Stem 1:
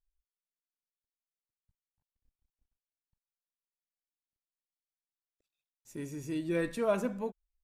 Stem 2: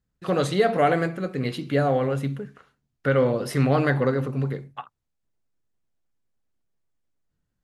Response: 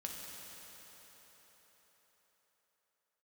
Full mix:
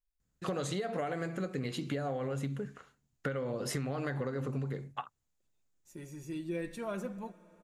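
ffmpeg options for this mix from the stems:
-filter_complex "[0:a]aecho=1:1:5.6:0.56,volume=-6.5dB,asplit=2[a][b];[b]volume=-15.5dB[c];[1:a]equalizer=f=7k:w=3.2:g=9.5,acompressor=threshold=-22dB:ratio=6,adelay=200,volume=-1.5dB[d];[2:a]atrim=start_sample=2205[e];[c][e]afir=irnorm=-1:irlink=0[f];[a][d][f]amix=inputs=3:normalize=0,acompressor=threshold=-32dB:ratio=6"

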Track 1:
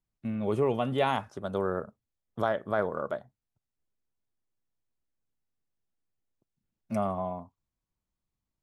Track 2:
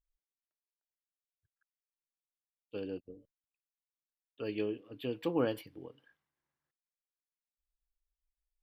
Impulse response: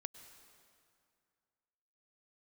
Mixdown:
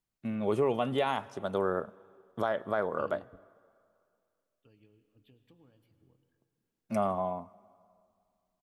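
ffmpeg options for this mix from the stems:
-filter_complex "[0:a]lowshelf=f=150:g=-9.5,volume=0dB,asplit=3[a][b][c];[b]volume=-9dB[d];[1:a]asubboost=boost=5:cutoff=180,acompressor=threshold=-39dB:ratio=16,adelay=250,volume=-6dB,asplit=2[e][f];[f]volume=-10dB[g];[c]apad=whole_len=391235[h];[e][h]sidechaingate=range=-33dB:threshold=-56dB:ratio=16:detection=peak[i];[2:a]atrim=start_sample=2205[j];[d][g]amix=inputs=2:normalize=0[k];[k][j]afir=irnorm=-1:irlink=0[l];[a][i][l]amix=inputs=3:normalize=0,alimiter=limit=-17.5dB:level=0:latency=1:release=155"

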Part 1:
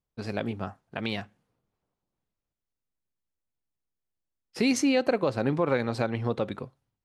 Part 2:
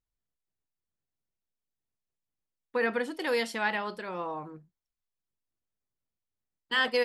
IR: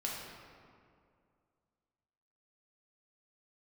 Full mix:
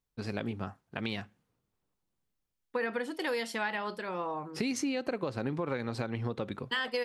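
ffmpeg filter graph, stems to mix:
-filter_complex "[0:a]equalizer=f=650:t=o:w=0.77:g=-4,volume=-1.5dB[a];[1:a]volume=0.5dB[b];[a][b]amix=inputs=2:normalize=0,acompressor=threshold=-29dB:ratio=6"

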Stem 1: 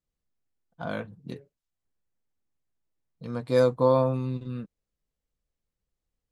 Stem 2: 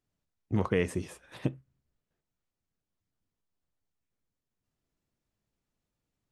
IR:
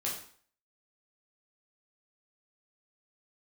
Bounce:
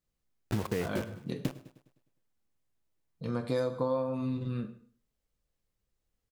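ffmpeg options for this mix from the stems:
-filter_complex "[0:a]volume=-0.5dB,asplit=2[a][b];[b]volume=-7dB[c];[1:a]lowpass=f=2k:p=1,acrusher=bits=5:mix=0:aa=0.000001,volume=3dB,asplit=3[d][e][f];[e]volume=-20dB[g];[f]volume=-20.5dB[h];[2:a]atrim=start_sample=2205[i];[c][g]amix=inputs=2:normalize=0[j];[j][i]afir=irnorm=-1:irlink=0[k];[h]aecho=0:1:102|204|306|408|510|612|714:1|0.47|0.221|0.104|0.0488|0.0229|0.0108[l];[a][d][k][l]amix=inputs=4:normalize=0,acompressor=threshold=-28dB:ratio=6"

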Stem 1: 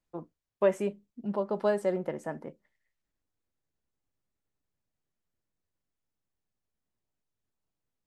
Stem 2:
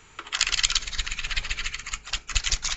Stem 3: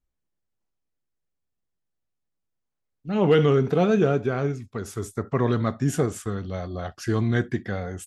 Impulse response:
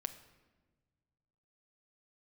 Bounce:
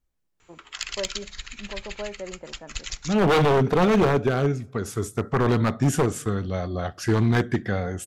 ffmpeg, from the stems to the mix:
-filter_complex "[0:a]lowpass=f=5.3k:w=0.5412,lowpass=f=5.3k:w=1.3066,adelay=350,volume=-7.5dB[a];[1:a]adelay=400,volume=-10dB,asplit=2[b][c];[c]volume=-14.5dB[d];[2:a]volume=2dB,asplit=2[e][f];[f]volume=-12.5dB[g];[3:a]atrim=start_sample=2205[h];[d][g]amix=inputs=2:normalize=0[i];[i][h]afir=irnorm=-1:irlink=0[j];[a][b][e][j]amix=inputs=4:normalize=0,aeval=exprs='0.224*(abs(mod(val(0)/0.224+3,4)-2)-1)':c=same"

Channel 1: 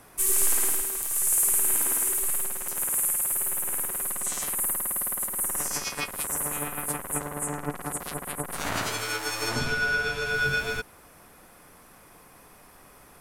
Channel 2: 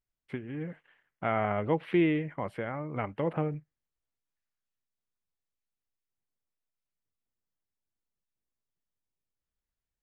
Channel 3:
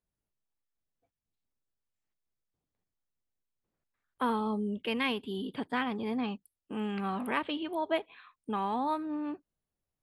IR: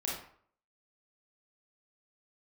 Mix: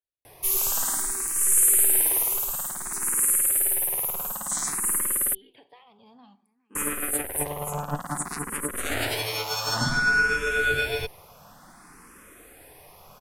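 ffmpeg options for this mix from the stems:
-filter_complex "[0:a]adelay=250,volume=-2dB,asplit=3[a][b][c];[a]atrim=end=5.35,asetpts=PTS-STARTPTS,afade=t=out:st=5.346:d=0.004:c=hsin[d];[b]atrim=start=5.35:end=6.75,asetpts=PTS-STARTPTS,volume=0[e];[c]atrim=start=6.75,asetpts=PTS-STARTPTS,afade=t=in:d=0.004:c=hsin[f];[d][e][f]concat=n=3:v=0:a=1[g];[2:a]lowshelf=f=410:g=-10,acompressor=threshold=-42dB:ratio=4,volume=-14dB,asplit=3[h][i][j];[i]volume=-13dB[k];[j]volume=-20.5dB[l];[3:a]atrim=start_sample=2205[m];[k][m]afir=irnorm=-1:irlink=0[n];[l]aecho=0:1:413|826|1239:1|0.16|0.0256[o];[g][h][n][o]amix=inputs=4:normalize=0,acontrast=89,asplit=2[p][q];[q]afreqshift=0.56[r];[p][r]amix=inputs=2:normalize=1"

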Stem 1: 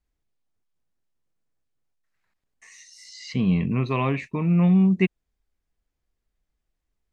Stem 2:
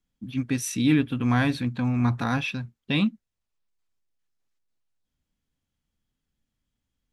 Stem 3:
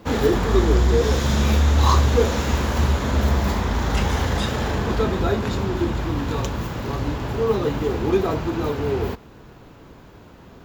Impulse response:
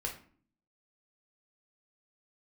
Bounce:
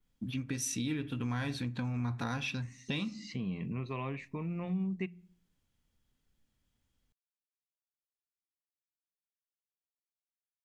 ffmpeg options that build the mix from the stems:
-filter_complex "[0:a]bandreject=f=87.52:t=h:w=4,bandreject=f=175.04:t=h:w=4,volume=-9.5dB,asplit=2[a][b];[b]volume=-22.5dB[c];[1:a]volume=1.5dB,asplit=2[d][e];[e]volume=-17dB[f];[d]adynamicequalizer=threshold=0.00501:dfrequency=6100:dqfactor=1:tfrequency=6100:tqfactor=1:attack=5:release=100:ratio=0.375:range=3.5:mode=boostabove:tftype=bell,acompressor=threshold=-29dB:ratio=3,volume=0dB[g];[3:a]atrim=start_sample=2205[h];[c][f]amix=inputs=2:normalize=0[i];[i][h]afir=irnorm=-1:irlink=0[j];[a][g][j]amix=inputs=3:normalize=0,acompressor=threshold=-37dB:ratio=2"

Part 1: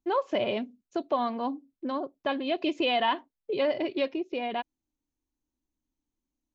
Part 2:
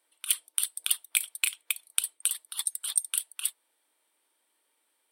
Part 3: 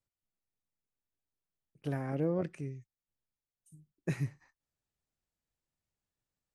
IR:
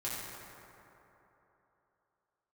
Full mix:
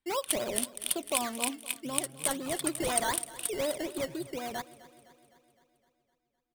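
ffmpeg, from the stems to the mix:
-filter_complex "[0:a]acrusher=samples=14:mix=1:aa=0.000001:lfo=1:lforange=8.4:lforate=4,volume=-5.5dB,asplit=2[a][b];[b]volume=-18.5dB[c];[1:a]highpass=1.4k,highshelf=f=5.6k:g=10.5,adynamicsmooth=sensitivity=3.5:basefreq=2.9k,volume=-7.5dB,asplit=2[d][e];[e]volume=-10.5dB[f];[2:a]equalizer=f=130:t=o:w=0.77:g=5.5,acompressor=threshold=-40dB:ratio=2,volume=-14dB,asplit=2[g][h];[h]volume=-11dB[i];[c][f][i]amix=inputs=3:normalize=0,aecho=0:1:256|512|768|1024|1280|1536|1792|2048|2304:1|0.58|0.336|0.195|0.113|0.0656|0.0381|0.0221|0.0128[j];[a][d][g][j]amix=inputs=4:normalize=0"

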